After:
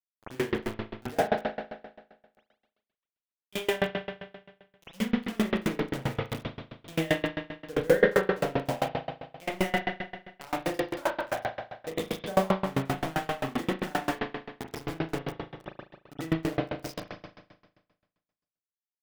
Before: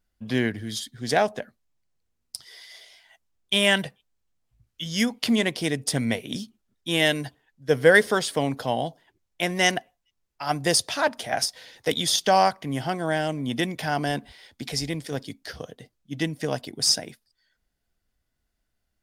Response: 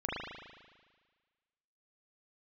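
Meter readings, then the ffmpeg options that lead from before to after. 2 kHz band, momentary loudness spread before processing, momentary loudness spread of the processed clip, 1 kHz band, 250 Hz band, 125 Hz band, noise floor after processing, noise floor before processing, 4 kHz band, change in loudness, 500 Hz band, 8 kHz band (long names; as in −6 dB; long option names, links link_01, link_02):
−8.0 dB, 19 LU, 14 LU, −6.0 dB, −4.0 dB, −4.0 dB, below −85 dBFS, −78 dBFS, −13.5 dB, −6.5 dB, −3.5 dB, −17.0 dB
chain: -filter_complex "[0:a]lowpass=frequency=1200:poles=1,asplit=2[link_01][link_02];[link_02]asoftclip=type=tanh:threshold=-16.5dB,volume=-7dB[link_03];[link_01][link_03]amix=inputs=2:normalize=0,flanger=delay=9.5:depth=1.1:regen=-56:speed=1.4:shape=triangular,acrusher=bits=4:mix=0:aa=0.000001[link_04];[1:a]atrim=start_sample=2205[link_05];[link_04][link_05]afir=irnorm=-1:irlink=0,aeval=exprs='val(0)*pow(10,-28*if(lt(mod(7.6*n/s,1),2*abs(7.6)/1000),1-mod(7.6*n/s,1)/(2*abs(7.6)/1000),(mod(7.6*n/s,1)-2*abs(7.6)/1000)/(1-2*abs(7.6)/1000))/20)':channel_layout=same"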